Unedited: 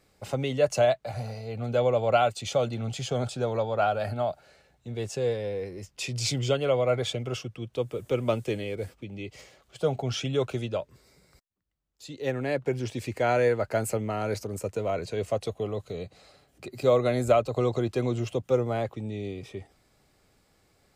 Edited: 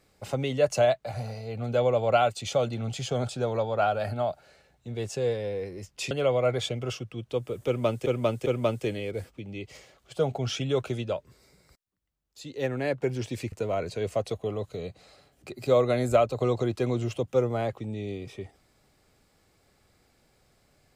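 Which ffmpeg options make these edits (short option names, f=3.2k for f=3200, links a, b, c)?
-filter_complex "[0:a]asplit=5[a][b][c][d][e];[a]atrim=end=6.112[f];[b]atrim=start=6.548:end=8.502[g];[c]atrim=start=8.098:end=8.502[h];[d]atrim=start=8.098:end=13.162[i];[e]atrim=start=14.678[j];[f][g]acrossfade=d=0.004:c1=hsin:c2=hsin[k];[k][h]acrossfade=d=0.004:c1=hsin:c2=hsin[l];[l][i]acrossfade=d=0.004:c1=hsin:c2=hsin[m];[m][j]acrossfade=d=0.004:c1=hsin:c2=hsin"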